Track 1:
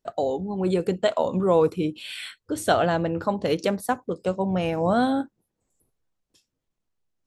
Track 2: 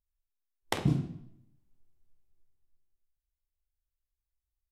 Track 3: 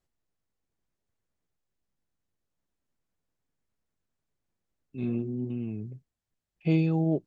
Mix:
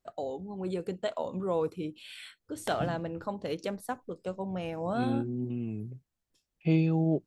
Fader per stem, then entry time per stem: −10.5, −9.0, −1.0 decibels; 0.00, 1.95, 0.00 seconds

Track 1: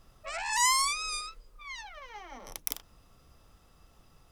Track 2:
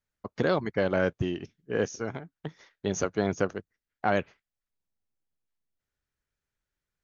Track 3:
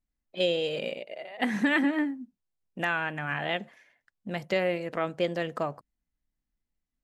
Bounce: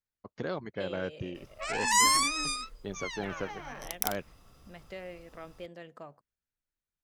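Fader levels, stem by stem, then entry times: +2.0, −9.5, −16.0 decibels; 1.35, 0.00, 0.40 seconds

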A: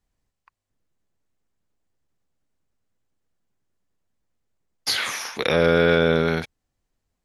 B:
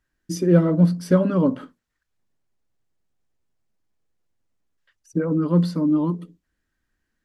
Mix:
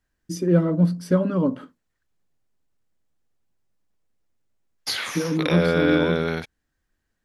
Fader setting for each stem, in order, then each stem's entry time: −3.5, −2.5 decibels; 0.00, 0.00 seconds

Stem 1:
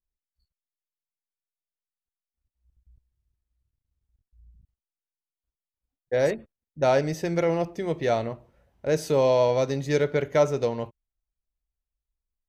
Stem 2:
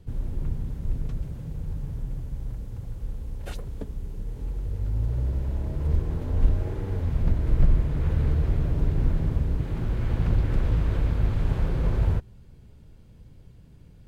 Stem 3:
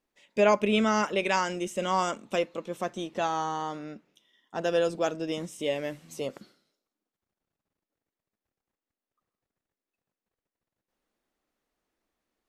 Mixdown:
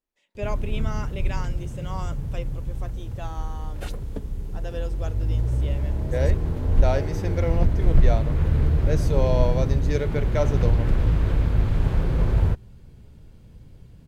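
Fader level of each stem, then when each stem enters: −4.5, +3.0, −10.0 decibels; 0.00, 0.35, 0.00 seconds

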